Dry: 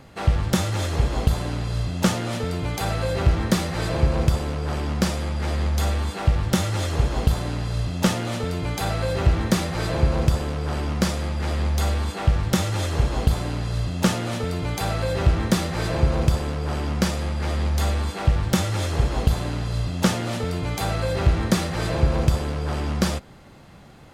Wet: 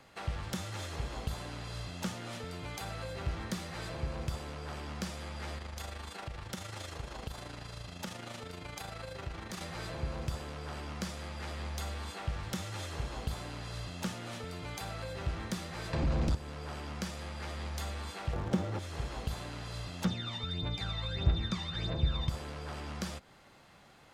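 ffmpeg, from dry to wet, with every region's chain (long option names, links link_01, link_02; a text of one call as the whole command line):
ffmpeg -i in.wav -filter_complex "[0:a]asettb=1/sr,asplit=3[link_01][link_02][link_03];[link_01]atrim=end=5.584[link_04];[link_02]atrim=start=5.58:end=9.61,asetpts=PTS-STARTPTS,afade=type=in:duration=0.004:curve=qsin,afade=type=out:start_time=4.026:duration=0.004:curve=qsin,acompressor=threshold=-25dB:ratio=1.5:attack=3.2:release=140:knee=1:detection=peak,tremolo=f=26:d=0.571[link_05];[link_03]atrim=start=9.606[link_06];[link_04][link_05]acrossfade=duration=0.004:curve1=hsin:curve2=qsin[link_07];[link_07][link_06]acrossfade=duration=0.004:curve1=qsin:curve2=hsin,asettb=1/sr,asplit=3[link_08][link_09][link_10];[link_08]atrim=end=15.934[link_11];[link_09]atrim=start=15.93:end=16.35,asetpts=PTS-STARTPTS,afade=type=in:duration=0.004:curve=qsin,afade=type=out:start_time=0.416:duration=0.004:curve=qsin,lowpass=8100,aeval=exprs='0.447*sin(PI/2*2.82*val(0)/0.447)':channel_layout=same[link_12];[link_10]atrim=start=16.346[link_13];[link_11][link_12]acrossfade=duration=0.004:curve1=hsin:curve2=qsin[link_14];[link_14][link_13]acrossfade=duration=0.004:curve1=qsin:curve2=hsin,asettb=1/sr,asplit=3[link_15][link_16][link_17];[link_15]atrim=end=18.334[link_18];[link_16]atrim=start=18.33:end=18.79,asetpts=PTS-STARTPTS,afade=type=in:duration=0.004:curve=qsin,afade=type=out:start_time=0.456:duration=0.004:curve=qsin,equalizer=frequency=480:width=0.39:gain=15,acrusher=bits=5:mode=log:mix=0:aa=0.000001,adynamicsmooth=sensitivity=3:basefreq=4700[link_19];[link_17]atrim=start=18.786[link_20];[link_18][link_19]acrossfade=duration=0.004:curve1=hsin:curve2=qsin[link_21];[link_21][link_20]acrossfade=duration=0.004:curve1=qsin:curve2=hsin,asettb=1/sr,asplit=3[link_22][link_23][link_24];[link_22]atrim=end=20.054[link_25];[link_23]atrim=start=20.05:end=22.29,asetpts=PTS-STARTPTS,afade=type=in:duration=0.004:curve=qsin,afade=type=out:start_time=2.236:duration=0.004:curve=qsin,lowpass=5000,aeval=exprs='val(0)+0.0398*sin(2*PI*3600*n/s)':channel_layout=same,aphaser=in_gain=1:out_gain=1:delay=1.1:decay=0.61:speed=1.6:type=triangular[link_26];[link_24]atrim=start=22.286[link_27];[link_25][link_26]acrossfade=duration=0.004:curve1=hsin:curve2=qsin[link_28];[link_28][link_27]acrossfade=duration=0.004:curve1=qsin:curve2=hsin,highshelf=frequency=10000:gain=-4,acrossover=split=270[link_29][link_30];[link_30]acompressor=threshold=-34dB:ratio=3[link_31];[link_29][link_31]amix=inputs=2:normalize=0,lowshelf=frequency=450:gain=-12,volume=-5.5dB" out.wav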